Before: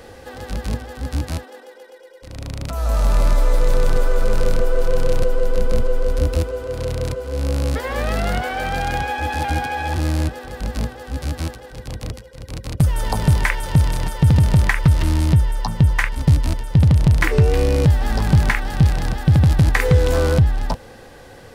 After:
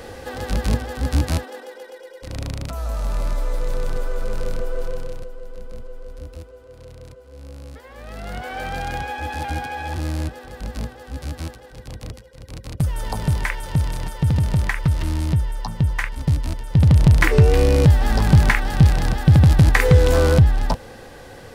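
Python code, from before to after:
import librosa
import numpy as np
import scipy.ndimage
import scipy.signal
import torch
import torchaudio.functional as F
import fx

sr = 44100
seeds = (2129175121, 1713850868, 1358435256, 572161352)

y = fx.gain(x, sr, db=fx.line((2.35, 4.0), (2.95, -7.5), (4.84, -7.5), (5.31, -17.5), (7.97, -17.5), (8.56, -5.0), (16.56, -5.0), (16.97, 1.5)))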